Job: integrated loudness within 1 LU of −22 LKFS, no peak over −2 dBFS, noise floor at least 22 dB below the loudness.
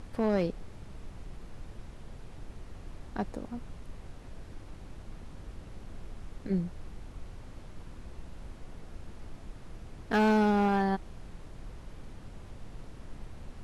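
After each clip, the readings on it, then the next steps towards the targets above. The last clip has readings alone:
share of clipped samples 0.5%; peaks flattened at −20.5 dBFS; background noise floor −48 dBFS; target noise floor −52 dBFS; integrated loudness −30.0 LKFS; sample peak −20.5 dBFS; target loudness −22.0 LKFS
→ clipped peaks rebuilt −20.5 dBFS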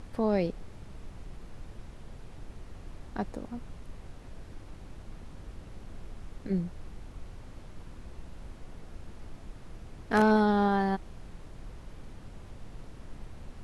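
share of clipped samples 0.0%; background noise floor −48 dBFS; target noise floor −51 dBFS
→ noise reduction from a noise print 6 dB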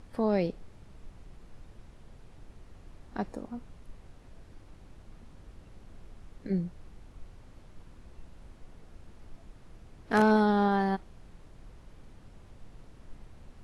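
background noise floor −54 dBFS; integrated loudness −29.0 LKFS; sample peak −11.5 dBFS; target loudness −22.0 LKFS
→ level +7 dB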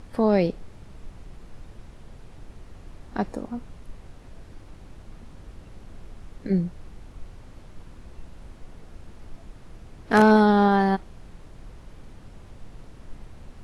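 integrated loudness −22.0 LKFS; sample peak −4.5 dBFS; background noise floor −47 dBFS

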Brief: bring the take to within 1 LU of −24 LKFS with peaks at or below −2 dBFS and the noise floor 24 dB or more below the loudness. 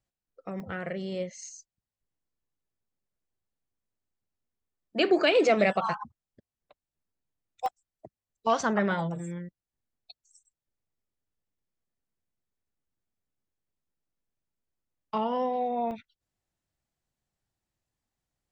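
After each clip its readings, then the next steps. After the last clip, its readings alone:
number of dropouts 3; longest dropout 1.2 ms; integrated loudness −28.5 LKFS; sample peak −11.0 dBFS; target loudness −24.0 LKFS
→ repair the gap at 0:00.60/0:07.66/0:15.91, 1.2 ms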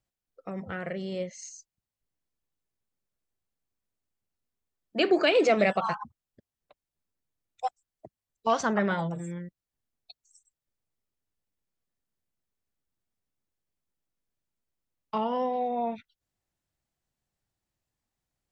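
number of dropouts 0; integrated loudness −28.5 LKFS; sample peak −11.0 dBFS; target loudness −24.0 LKFS
→ level +4.5 dB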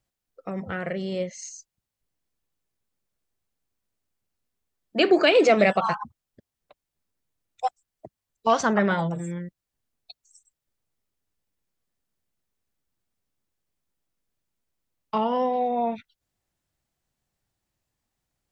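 integrated loudness −24.0 LKFS; sample peak −6.5 dBFS; background noise floor −86 dBFS

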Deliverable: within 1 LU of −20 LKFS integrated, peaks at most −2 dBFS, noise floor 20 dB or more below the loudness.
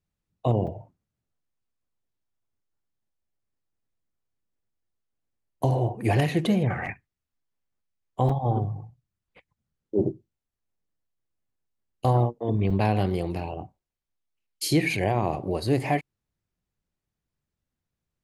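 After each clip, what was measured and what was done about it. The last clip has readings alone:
number of dropouts 4; longest dropout 5.1 ms; integrated loudness −26.0 LKFS; sample peak −9.0 dBFS; target loudness −20.0 LKFS
→ repair the gap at 0:00.67/0:06.86/0:08.29/0:12.70, 5.1 ms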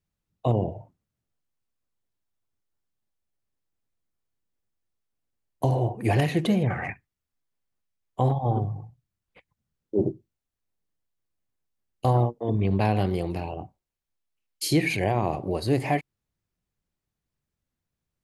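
number of dropouts 0; integrated loudness −26.0 LKFS; sample peak −9.0 dBFS; target loudness −20.0 LKFS
→ level +6 dB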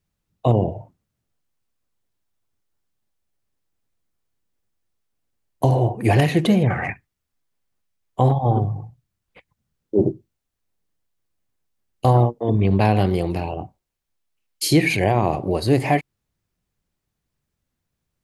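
integrated loudness −20.0 LKFS; sample peak −3.0 dBFS; background noise floor −80 dBFS

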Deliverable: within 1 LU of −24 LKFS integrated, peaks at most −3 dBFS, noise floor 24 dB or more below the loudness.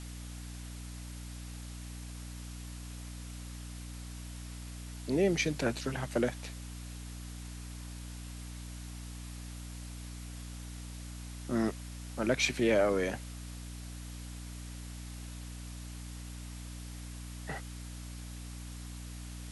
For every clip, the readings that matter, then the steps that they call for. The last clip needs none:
mains hum 60 Hz; hum harmonics up to 300 Hz; level of the hum −41 dBFS; background noise floor −44 dBFS; target noise floor −62 dBFS; integrated loudness −38.0 LKFS; sample peak −14.0 dBFS; target loudness −24.0 LKFS
→ mains-hum notches 60/120/180/240/300 Hz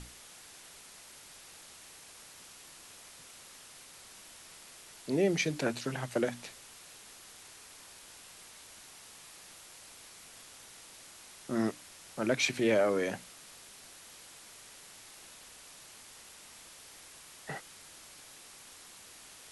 mains hum none found; background noise floor −53 dBFS; target noise floor −57 dBFS
→ broadband denoise 6 dB, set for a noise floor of −53 dBFS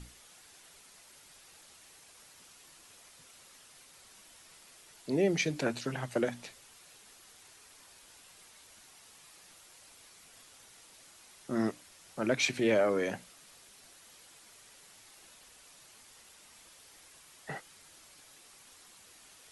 background noise floor −58 dBFS; integrated loudness −32.5 LKFS; sample peak −14.5 dBFS; target loudness −24.0 LKFS
→ level +8.5 dB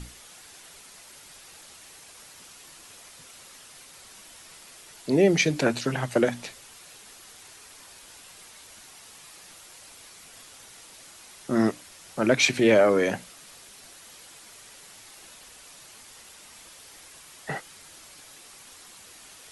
integrated loudness −24.0 LKFS; sample peak −6.0 dBFS; background noise floor −49 dBFS

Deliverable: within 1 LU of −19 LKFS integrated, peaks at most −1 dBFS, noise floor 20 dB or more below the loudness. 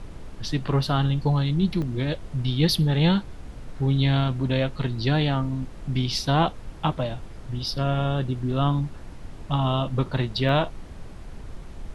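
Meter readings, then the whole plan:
number of dropouts 2; longest dropout 1.4 ms; background noise floor −40 dBFS; target noise floor −45 dBFS; integrated loudness −24.5 LKFS; sample peak −7.5 dBFS; target loudness −19.0 LKFS
→ repair the gap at 0:01.82/0:10.49, 1.4 ms
noise reduction from a noise print 6 dB
level +5.5 dB

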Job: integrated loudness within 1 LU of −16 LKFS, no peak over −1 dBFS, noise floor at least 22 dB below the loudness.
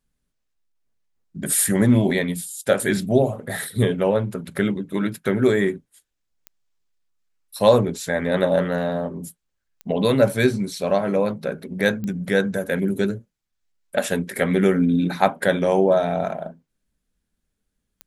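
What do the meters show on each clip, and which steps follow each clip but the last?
number of clicks 4; integrated loudness −21.5 LKFS; sample peak −3.0 dBFS; target loudness −16.0 LKFS
→ click removal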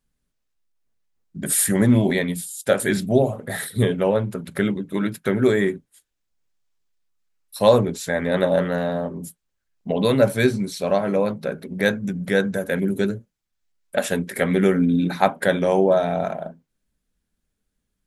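number of clicks 0; integrated loudness −21.5 LKFS; sample peak −3.0 dBFS; target loudness −16.0 LKFS
→ level +5.5 dB
brickwall limiter −1 dBFS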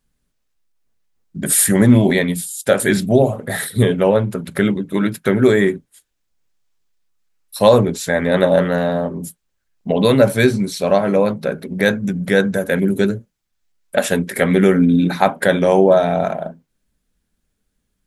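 integrated loudness −16.0 LKFS; sample peak −1.0 dBFS; background noise floor −73 dBFS

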